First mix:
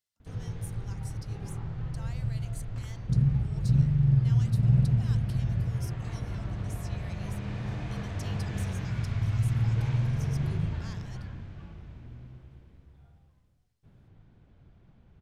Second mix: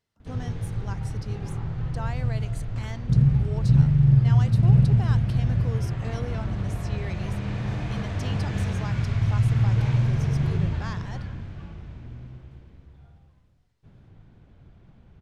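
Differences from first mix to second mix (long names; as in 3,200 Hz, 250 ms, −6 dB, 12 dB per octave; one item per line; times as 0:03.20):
speech: remove first-order pre-emphasis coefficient 0.9
background +5.5 dB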